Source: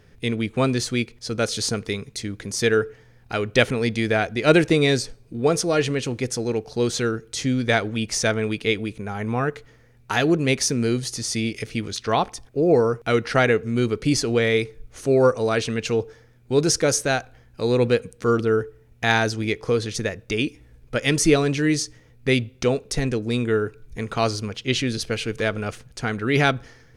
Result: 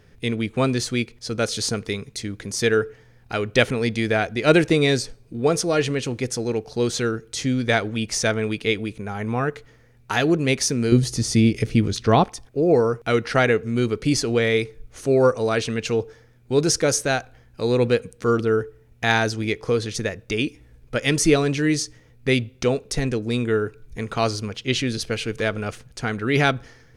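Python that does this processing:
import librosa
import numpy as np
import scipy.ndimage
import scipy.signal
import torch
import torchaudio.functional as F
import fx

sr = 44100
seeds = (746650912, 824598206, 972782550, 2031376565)

y = fx.low_shelf(x, sr, hz=440.0, db=11.5, at=(10.92, 12.24))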